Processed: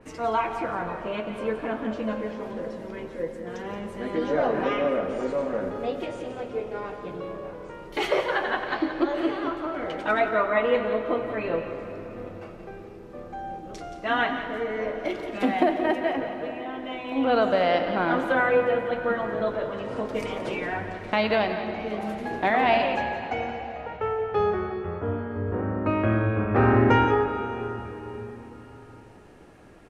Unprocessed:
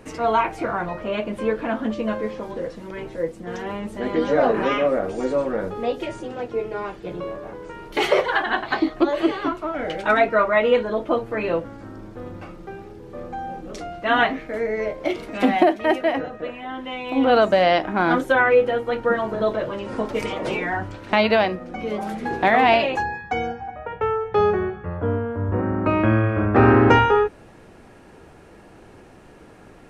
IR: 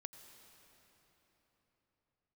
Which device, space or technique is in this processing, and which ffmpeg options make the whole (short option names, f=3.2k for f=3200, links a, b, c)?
cave: -filter_complex "[0:a]aecho=1:1:175:0.282[a];[1:a]atrim=start_sample=2205[b];[a][b]afir=irnorm=-1:irlink=0,adynamicequalizer=threshold=0.00794:dfrequency=4000:dqfactor=0.7:tfrequency=4000:tqfactor=0.7:attack=5:release=100:ratio=0.375:range=2.5:mode=cutabove:tftype=highshelf"